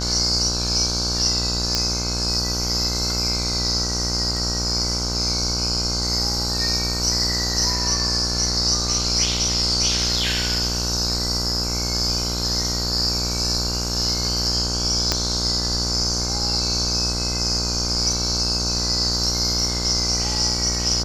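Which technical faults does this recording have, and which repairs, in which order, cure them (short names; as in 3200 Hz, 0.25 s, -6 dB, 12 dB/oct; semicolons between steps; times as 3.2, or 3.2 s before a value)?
buzz 60 Hz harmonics 26 -27 dBFS
1.75 pop -5 dBFS
15.12 pop -5 dBFS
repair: de-click; de-hum 60 Hz, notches 26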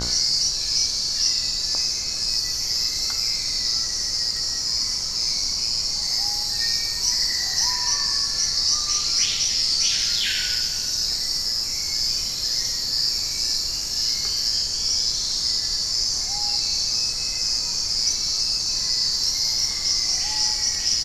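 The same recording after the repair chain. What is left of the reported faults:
15.12 pop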